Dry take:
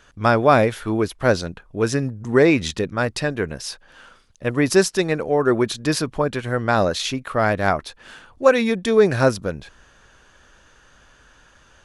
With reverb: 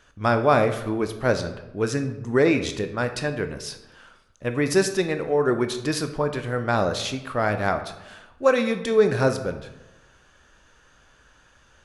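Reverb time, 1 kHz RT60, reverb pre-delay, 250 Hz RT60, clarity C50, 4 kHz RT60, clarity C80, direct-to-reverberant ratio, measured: 0.95 s, 0.95 s, 15 ms, 1.1 s, 10.5 dB, 0.60 s, 12.5 dB, 7.5 dB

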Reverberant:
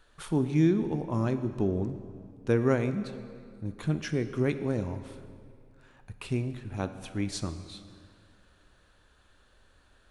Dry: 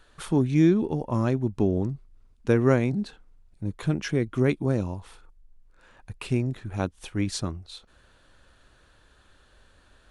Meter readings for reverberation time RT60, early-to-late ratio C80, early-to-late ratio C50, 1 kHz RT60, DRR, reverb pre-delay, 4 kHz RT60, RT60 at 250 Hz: 2.3 s, 12.0 dB, 11.0 dB, 2.3 s, 9.5 dB, 11 ms, 1.7 s, 2.3 s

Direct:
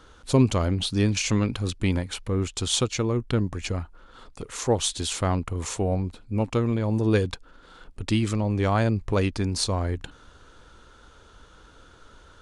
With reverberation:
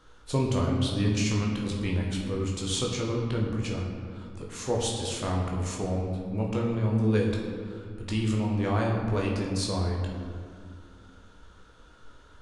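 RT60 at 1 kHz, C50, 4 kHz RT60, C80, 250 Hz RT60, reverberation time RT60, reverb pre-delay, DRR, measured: 1.9 s, 2.5 dB, 1.2 s, 4.0 dB, 3.0 s, 2.1 s, 14 ms, -2.5 dB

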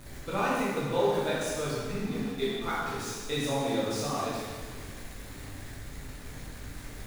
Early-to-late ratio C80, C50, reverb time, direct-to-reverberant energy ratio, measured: 0.5 dB, -2.5 dB, 1.5 s, -8.5 dB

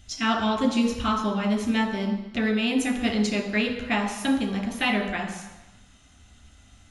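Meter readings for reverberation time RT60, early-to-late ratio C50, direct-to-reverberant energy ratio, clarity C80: 1.0 s, 6.5 dB, 0.0 dB, 8.5 dB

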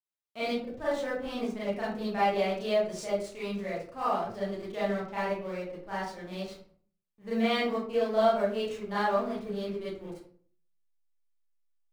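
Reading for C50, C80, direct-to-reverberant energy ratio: 1.0 dB, 6.5 dB, -10.0 dB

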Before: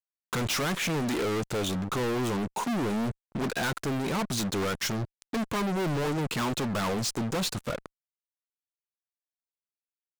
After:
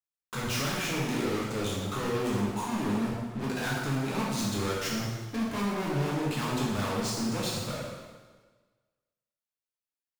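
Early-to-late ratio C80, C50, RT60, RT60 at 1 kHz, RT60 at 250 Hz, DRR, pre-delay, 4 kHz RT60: 2.0 dB, 0.0 dB, 1.4 s, 1.4 s, 1.3 s, -5.5 dB, 5 ms, 1.3 s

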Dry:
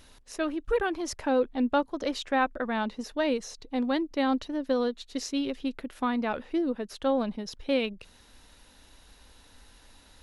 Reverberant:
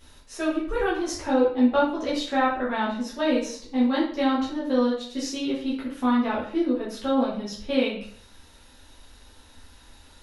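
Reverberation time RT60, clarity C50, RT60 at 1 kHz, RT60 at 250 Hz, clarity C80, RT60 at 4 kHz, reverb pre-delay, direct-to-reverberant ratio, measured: 0.55 s, 4.5 dB, 0.50 s, 0.55 s, 8.5 dB, 0.45 s, 7 ms, -8.0 dB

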